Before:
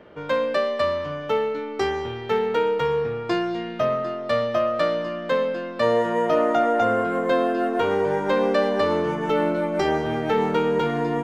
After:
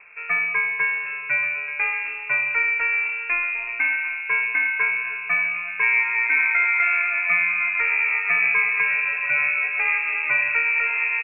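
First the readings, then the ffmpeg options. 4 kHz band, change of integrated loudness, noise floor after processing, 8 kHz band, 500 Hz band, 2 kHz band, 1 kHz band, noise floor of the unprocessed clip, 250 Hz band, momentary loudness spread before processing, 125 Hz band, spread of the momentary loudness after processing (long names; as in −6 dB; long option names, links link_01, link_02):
below −10 dB, +3.0 dB, −32 dBFS, can't be measured, −24.0 dB, +14.5 dB, −7.0 dB, −33 dBFS, below −25 dB, 5 LU, below −15 dB, 5 LU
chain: -filter_complex "[0:a]asplit=2[link_01][link_02];[link_02]adelay=1128,lowpass=frequency=1100:poles=1,volume=-12.5dB,asplit=2[link_03][link_04];[link_04]adelay=1128,lowpass=frequency=1100:poles=1,volume=0.31,asplit=2[link_05][link_06];[link_06]adelay=1128,lowpass=frequency=1100:poles=1,volume=0.31[link_07];[link_01][link_03][link_05][link_07]amix=inputs=4:normalize=0,acrusher=bits=6:mode=log:mix=0:aa=0.000001,lowpass=frequency=2400:width_type=q:width=0.5098,lowpass=frequency=2400:width_type=q:width=0.6013,lowpass=frequency=2400:width_type=q:width=0.9,lowpass=frequency=2400:width_type=q:width=2.563,afreqshift=-2800"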